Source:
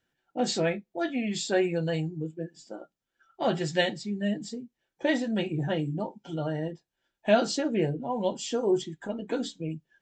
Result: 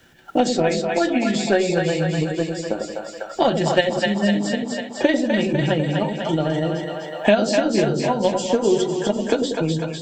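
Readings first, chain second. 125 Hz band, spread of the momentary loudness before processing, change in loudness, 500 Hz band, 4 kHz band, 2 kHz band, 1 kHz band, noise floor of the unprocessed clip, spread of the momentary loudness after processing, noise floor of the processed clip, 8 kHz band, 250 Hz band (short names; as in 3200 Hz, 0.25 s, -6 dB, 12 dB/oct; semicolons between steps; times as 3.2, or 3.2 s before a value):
+8.5 dB, 11 LU, +8.5 dB, +9.5 dB, +8.0 dB, +9.5 dB, +10.0 dB, -85 dBFS, 7 LU, -36 dBFS, +7.5 dB, +9.0 dB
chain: transient shaper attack +9 dB, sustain +5 dB; on a send: split-band echo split 570 Hz, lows 93 ms, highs 0.249 s, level -5 dB; on the sum: three-band squash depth 70%; gain +3.5 dB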